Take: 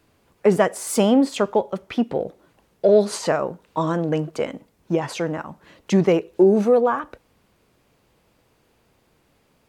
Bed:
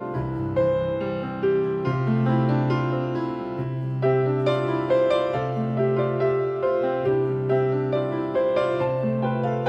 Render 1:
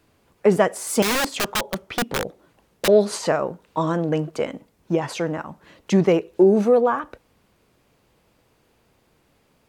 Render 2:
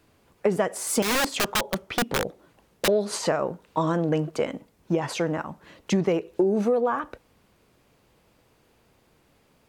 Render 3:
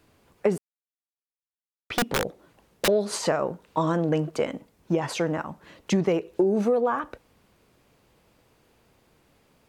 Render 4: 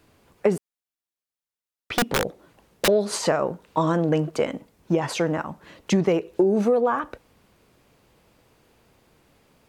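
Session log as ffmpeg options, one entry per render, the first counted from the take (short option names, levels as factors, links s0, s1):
-filter_complex "[0:a]asettb=1/sr,asplit=3[s0][s1][s2];[s0]atrim=end=1.024[s3];[s1]atrim=start=1.02:end=2.88,asetpts=PTS-STARTPTS,afade=t=in:d=0.004:c=qsin,afade=t=out:st=1.856:d=0.004:c=qsin,aeval=exprs='(mod(6.68*val(0)+1,2)-1)/6.68':c=same[s4];[s2]atrim=start=2.876[s5];[s3][s4]acrossfade=d=0.004:c1=hsin:c2=qsin[s6];[s6][s5]acrossfade=d=0.004:c1=qsin:c2=hsin"
-af "acompressor=threshold=0.112:ratio=6"
-filter_complex "[0:a]asplit=3[s0][s1][s2];[s0]atrim=end=0.58,asetpts=PTS-STARTPTS,afade=t=out:st=0.576:d=0.004:c=hsin[s3];[s1]atrim=start=0.58:end=1.9,asetpts=PTS-STARTPTS,volume=0[s4];[s2]atrim=start=1.9,asetpts=PTS-STARTPTS,afade=t=in:d=0.004:c=hsin[s5];[s3][s4][s5]concat=n=3:v=0:a=1"
-af "volume=1.33"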